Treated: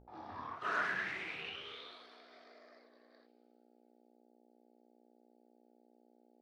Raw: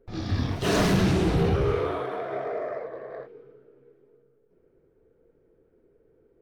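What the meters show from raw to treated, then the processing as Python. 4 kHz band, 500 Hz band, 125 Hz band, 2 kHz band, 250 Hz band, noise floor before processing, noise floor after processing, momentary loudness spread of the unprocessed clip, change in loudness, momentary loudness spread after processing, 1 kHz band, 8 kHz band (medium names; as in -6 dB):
-12.5 dB, -25.0 dB, -36.0 dB, -4.0 dB, -28.5 dB, -65 dBFS, -69 dBFS, 16 LU, -14.0 dB, 23 LU, -10.5 dB, -25.5 dB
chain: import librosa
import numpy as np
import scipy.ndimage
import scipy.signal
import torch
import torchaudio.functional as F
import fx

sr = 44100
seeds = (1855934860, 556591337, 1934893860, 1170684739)

y = fx.filter_sweep_bandpass(x, sr, from_hz=890.0, to_hz=4600.0, start_s=0.27, end_s=2.05, q=6.0)
y = fx.dmg_buzz(y, sr, base_hz=60.0, harmonics=14, level_db=-62.0, tilt_db=-6, odd_only=False)
y = fx.hum_notches(y, sr, base_hz=60, count=3)
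y = y * librosa.db_to_amplitude(2.5)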